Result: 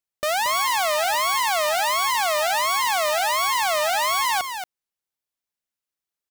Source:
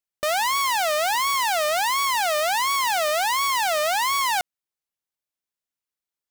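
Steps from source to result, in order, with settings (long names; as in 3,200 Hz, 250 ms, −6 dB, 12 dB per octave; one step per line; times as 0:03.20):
single-tap delay 229 ms −8 dB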